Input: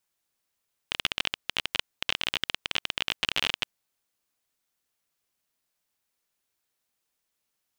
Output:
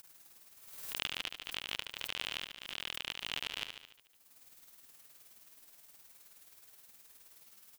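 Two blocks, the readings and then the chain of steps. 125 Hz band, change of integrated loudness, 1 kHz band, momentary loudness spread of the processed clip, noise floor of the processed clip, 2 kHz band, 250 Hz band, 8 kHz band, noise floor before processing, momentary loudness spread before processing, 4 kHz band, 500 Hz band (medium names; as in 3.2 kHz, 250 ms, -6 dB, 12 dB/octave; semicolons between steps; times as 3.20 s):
-10.0 dB, -9.5 dB, -10.0 dB, 18 LU, -66 dBFS, -10.0 dB, -10.0 dB, -5.5 dB, -81 dBFS, 5 LU, -9.5 dB, -10.0 dB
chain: treble shelf 9.9 kHz +7.5 dB; in parallel at -1 dB: upward compressor, threshold -30 dBFS; on the sum: peak limiter -12.5 dBFS, peak gain reduction 11 dB; tremolo 19 Hz, depth 98%; on a send: feedback delay 73 ms, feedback 57%, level -7 dB; on the sum: swell ahead of each attack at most 51 dB/s; trim -5 dB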